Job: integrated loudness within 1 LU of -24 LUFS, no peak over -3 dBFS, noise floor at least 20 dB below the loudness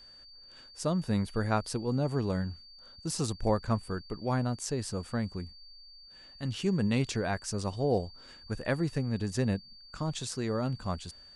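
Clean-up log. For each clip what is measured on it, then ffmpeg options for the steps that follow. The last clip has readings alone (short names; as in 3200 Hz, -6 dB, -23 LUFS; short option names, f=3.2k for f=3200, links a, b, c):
steady tone 4600 Hz; tone level -51 dBFS; loudness -32.5 LUFS; peak -15.0 dBFS; loudness target -24.0 LUFS
-> -af "bandreject=f=4.6k:w=30"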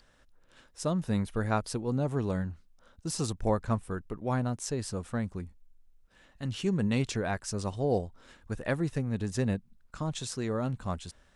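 steady tone none; loudness -32.5 LUFS; peak -15.0 dBFS; loudness target -24.0 LUFS
-> -af "volume=8.5dB"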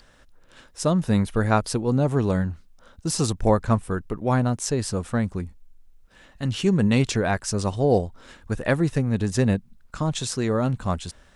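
loudness -24.0 LUFS; peak -6.5 dBFS; noise floor -55 dBFS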